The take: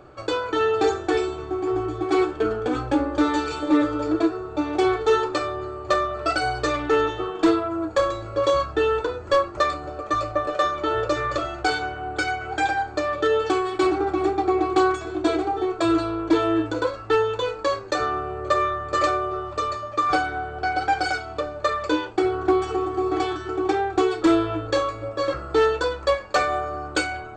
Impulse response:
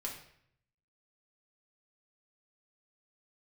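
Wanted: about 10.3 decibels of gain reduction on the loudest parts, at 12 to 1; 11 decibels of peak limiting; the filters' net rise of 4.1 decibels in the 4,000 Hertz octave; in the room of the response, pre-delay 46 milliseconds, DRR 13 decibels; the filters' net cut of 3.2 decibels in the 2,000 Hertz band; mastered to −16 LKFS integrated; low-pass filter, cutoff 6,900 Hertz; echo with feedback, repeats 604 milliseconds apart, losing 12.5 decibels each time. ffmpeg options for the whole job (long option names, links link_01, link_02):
-filter_complex "[0:a]lowpass=6900,equalizer=frequency=2000:width_type=o:gain=-6,equalizer=frequency=4000:width_type=o:gain=7,acompressor=threshold=-25dB:ratio=12,alimiter=limit=-23dB:level=0:latency=1,aecho=1:1:604|1208|1812:0.237|0.0569|0.0137,asplit=2[link_01][link_02];[1:a]atrim=start_sample=2205,adelay=46[link_03];[link_02][link_03]afir=irnorm=-1:irlink=0,volume=-13dB[link_04];[link_01][link_04]amix=inputs=2:normalize=0,volume=15.5dB"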